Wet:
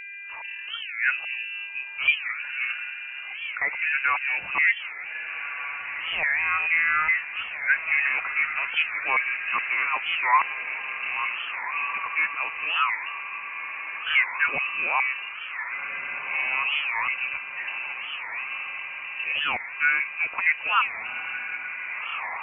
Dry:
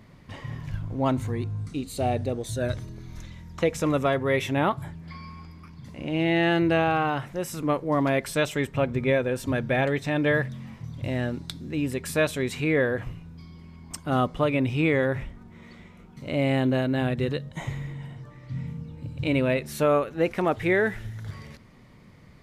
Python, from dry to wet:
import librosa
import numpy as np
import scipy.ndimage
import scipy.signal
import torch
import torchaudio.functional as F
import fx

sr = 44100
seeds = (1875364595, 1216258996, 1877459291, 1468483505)

y = fx.filter_lfo_lowpass(x, sr, shape='saw_up', hz=2.4, low_hz=720.0, high_hz=1900.0, q=6.3)
y = fx.dmg_buzz(y, sr, base_hz=400.0, harmonics=3, level_db=-34.0, tilt_db=-6, odd_only=False)
y = fx.freq_invert(y, sr, carrier_hz=2800)
y = fx.echo_diffused(y, sr, ms=1600, feedback_pct=57, wet_db=-8.5)
y = fx.record_warp(y, sr, rpm=45.0, depth_cents=250.0)
y = F.gain(torch.from_numpy(y), -5.5).numpy()